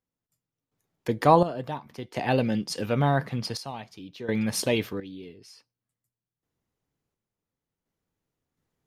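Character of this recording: random-step tremolo 1.4 Hz, depth 85%

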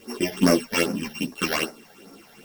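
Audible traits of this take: a buzz of ramps at a fixed pitch in blocks of 16 samples; phasing stages 8, 2.5 Hz, lowest notch 320–3300 Hz; a quantiser's noise floor 10-bit, dither triangular; a shimmering, thickened sound

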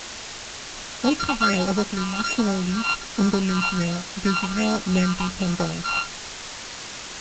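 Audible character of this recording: a buzz of ramps at a fixed pitch in blocks of 32 samples; phasing stages 6, 1.3 Hz, lowest notch 450–3000 Hz; a quantiser's noise floor 6-bit, dither triangular; G.722

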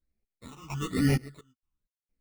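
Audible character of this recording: aliases and images of a low sample rate 1600 Hz, jitter 0%; phasing stages 8, 1.1 Hz, lowest notch 540–1100 Hz; random-step tremolo 4.3 Hz, depth 100%; a shimmering, thickened sound

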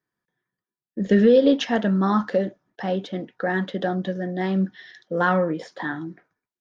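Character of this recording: noise floor -93 dBFS; spectral tilt -5.5 dB/oct

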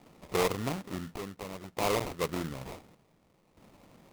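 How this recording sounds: a quantiser's noise floor 10-bit, dither none; chopped level 0.56 Hz, depth 65%, duty 65%; aliases and images of a low sample rate 1600 Hz, jitter 20%

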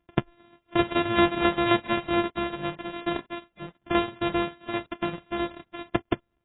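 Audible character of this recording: a buzz of ramps at a fixed pitch in blocks of 128 samples; tremolo saw down 7.6 Hz, depth 60%; AAC

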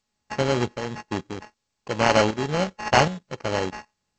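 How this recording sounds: a buzz of ramps at a fixed pitch in blocks of 16 samples; tremolo saw up 1.3 Hz, depth 70%; aliases and images of a low sample rate 3600 Hz, jitter 0%; G.722

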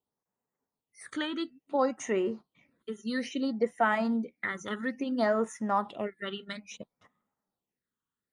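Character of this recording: phasing stages 8, 0.59 Hz, lowest notch 660–4300 Hz

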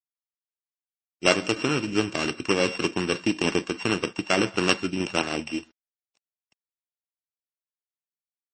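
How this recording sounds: a buzz of ramps at a fixed pitch in blocks of 16 samples; tremolo saw down 3.2 Hz, depth 35%; a quantiser's noise floor 10-bit, dither none; MP3

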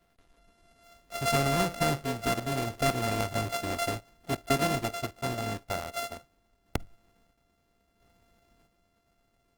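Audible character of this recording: a buzz of ramps at a fixed pitch in blocks of 64 samples; random-step tremolo 1.5 Hz; Opus

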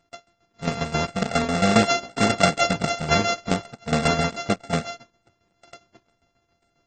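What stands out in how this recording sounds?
a buzz of ramps at a fixed pitch in blocks of 64 samples; tremolo saw down 7.4 Hz, depth 75%; AAC

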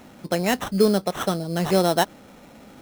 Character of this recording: aliases and images of a low sample rate 4700 Hz, jitter 0%

